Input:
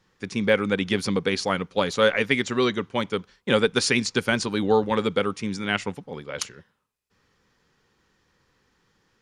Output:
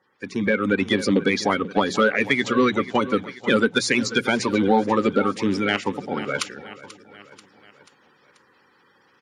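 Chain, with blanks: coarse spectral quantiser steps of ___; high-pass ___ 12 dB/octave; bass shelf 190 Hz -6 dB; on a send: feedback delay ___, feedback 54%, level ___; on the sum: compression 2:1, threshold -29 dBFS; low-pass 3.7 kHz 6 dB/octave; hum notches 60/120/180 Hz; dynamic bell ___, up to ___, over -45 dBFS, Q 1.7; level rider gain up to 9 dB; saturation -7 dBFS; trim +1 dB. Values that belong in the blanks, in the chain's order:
30 dB, 120 Hz, 486 ms, -19.5 dB, 240 Hz, +5 dB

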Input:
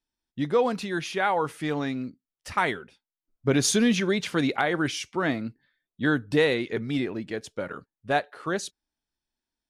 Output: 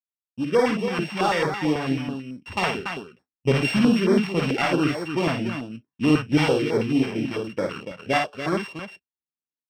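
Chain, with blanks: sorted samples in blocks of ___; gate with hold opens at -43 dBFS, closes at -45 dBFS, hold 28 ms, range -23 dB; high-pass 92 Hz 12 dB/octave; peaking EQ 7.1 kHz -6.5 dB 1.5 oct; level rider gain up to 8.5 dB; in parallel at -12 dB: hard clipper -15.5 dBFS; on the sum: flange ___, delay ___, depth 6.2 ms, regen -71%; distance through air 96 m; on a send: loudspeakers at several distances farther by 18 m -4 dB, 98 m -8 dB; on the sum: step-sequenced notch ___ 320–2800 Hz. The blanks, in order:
16 samples, 0.47 Hz, 0.9 ms, 9.1 Hz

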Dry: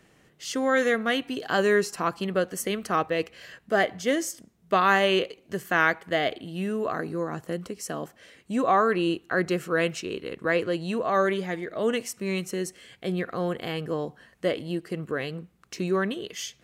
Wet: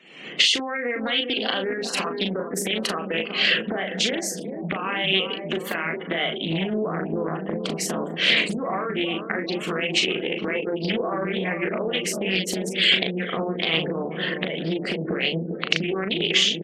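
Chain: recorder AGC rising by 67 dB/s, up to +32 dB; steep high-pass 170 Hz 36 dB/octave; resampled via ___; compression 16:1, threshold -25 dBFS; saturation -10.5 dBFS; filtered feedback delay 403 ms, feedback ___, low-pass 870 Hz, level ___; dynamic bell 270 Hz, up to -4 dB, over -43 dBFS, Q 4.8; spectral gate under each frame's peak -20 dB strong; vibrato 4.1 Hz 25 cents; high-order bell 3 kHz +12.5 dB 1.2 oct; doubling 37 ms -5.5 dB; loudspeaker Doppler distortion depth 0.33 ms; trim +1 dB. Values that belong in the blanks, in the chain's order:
32 kHz, 82%, -5.5 dB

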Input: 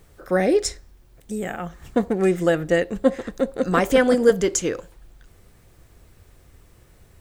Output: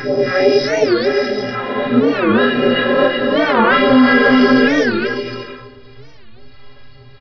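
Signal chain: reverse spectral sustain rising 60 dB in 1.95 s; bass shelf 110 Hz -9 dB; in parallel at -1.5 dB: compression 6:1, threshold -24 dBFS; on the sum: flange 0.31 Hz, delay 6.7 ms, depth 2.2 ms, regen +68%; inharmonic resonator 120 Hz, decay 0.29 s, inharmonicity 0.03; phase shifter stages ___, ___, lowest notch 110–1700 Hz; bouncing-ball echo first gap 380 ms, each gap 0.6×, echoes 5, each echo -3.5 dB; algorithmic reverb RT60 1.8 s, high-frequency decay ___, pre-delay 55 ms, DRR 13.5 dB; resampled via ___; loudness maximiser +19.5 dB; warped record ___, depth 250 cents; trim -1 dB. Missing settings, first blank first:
2, 1.6 Hz, 0.55×, 11.025 kHz, 45 rpm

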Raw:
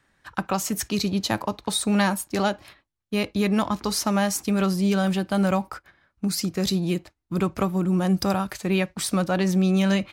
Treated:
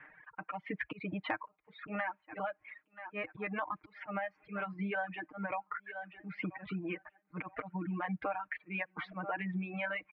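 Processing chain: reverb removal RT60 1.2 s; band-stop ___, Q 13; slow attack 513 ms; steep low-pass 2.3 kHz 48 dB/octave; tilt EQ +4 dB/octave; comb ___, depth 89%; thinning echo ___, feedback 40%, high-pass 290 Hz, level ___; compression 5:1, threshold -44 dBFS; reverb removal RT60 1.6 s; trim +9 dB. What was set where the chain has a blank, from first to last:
1.3 kHz, 6.5 ms, 979 ms, -24 dB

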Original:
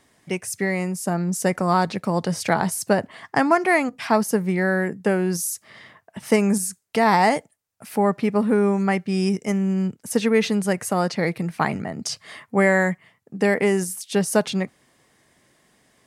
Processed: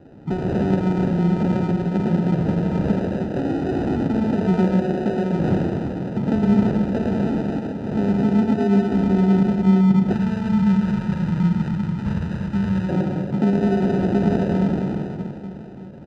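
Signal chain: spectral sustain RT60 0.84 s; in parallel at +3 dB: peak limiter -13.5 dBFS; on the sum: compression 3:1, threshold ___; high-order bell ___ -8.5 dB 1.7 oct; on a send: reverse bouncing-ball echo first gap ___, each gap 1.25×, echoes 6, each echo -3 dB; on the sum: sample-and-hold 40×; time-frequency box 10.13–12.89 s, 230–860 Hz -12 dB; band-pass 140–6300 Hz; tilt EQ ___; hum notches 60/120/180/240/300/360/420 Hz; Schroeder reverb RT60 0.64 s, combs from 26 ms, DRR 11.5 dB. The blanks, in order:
-30 dBFS, 810 Hz, 110 ms, -4.5 dB/octave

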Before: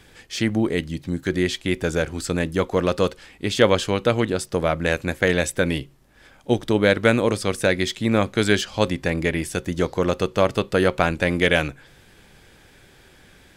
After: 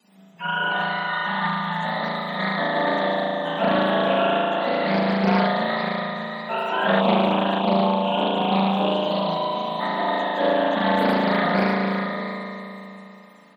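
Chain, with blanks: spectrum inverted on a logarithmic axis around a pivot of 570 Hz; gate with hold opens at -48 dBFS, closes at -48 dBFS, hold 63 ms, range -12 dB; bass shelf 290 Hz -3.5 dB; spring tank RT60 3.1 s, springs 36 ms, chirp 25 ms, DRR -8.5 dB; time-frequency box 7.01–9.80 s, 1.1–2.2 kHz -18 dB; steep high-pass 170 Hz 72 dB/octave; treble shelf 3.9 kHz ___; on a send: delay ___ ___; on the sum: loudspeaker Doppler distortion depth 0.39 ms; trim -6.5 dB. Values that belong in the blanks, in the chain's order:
+3.5 dB, 595 ms, -9.5 dB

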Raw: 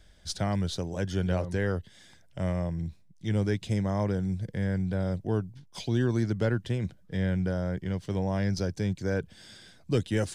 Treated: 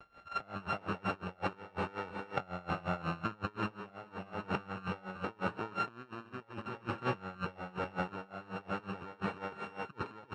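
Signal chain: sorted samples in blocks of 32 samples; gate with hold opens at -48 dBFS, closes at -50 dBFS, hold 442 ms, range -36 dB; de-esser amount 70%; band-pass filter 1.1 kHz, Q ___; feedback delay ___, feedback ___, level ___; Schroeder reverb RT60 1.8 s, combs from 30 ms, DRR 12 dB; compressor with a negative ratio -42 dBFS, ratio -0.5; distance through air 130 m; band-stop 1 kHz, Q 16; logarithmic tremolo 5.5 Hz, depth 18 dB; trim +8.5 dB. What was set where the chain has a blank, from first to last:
0.7, 324 ms, 20%, -3.5 dB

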